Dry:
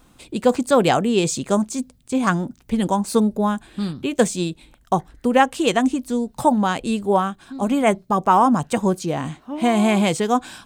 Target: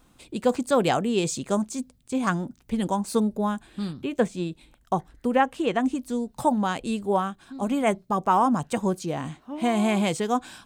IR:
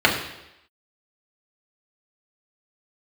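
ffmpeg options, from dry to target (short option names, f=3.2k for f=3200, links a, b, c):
-filter_complex "[0:a]asettb=1/sr,asplit=3[a][b][c];[a]atrim=end=4.024[d];[b]atrim=start=4.02:end=5.95,asetpts=PTS-STARTPTS,afade=t=in:d=0.004:c=qsin,afade=t=out:st=1.926:d=0.004:c=qsin,acrossover=split=2900[e][f];[f]acompressor=threshold=-41dB:ratio=4:attack=1:release=60[g];[e][g]amix=inputs=2:normalize=0[h];[c]atrim=start=5.946[i];[d][h]acrossfade=d=0.004:c1=hsin:c2=qsin[j];[j][i]acrossfade=d=0.004:c1=qsin:c2=hsin,volume=-5.5dB"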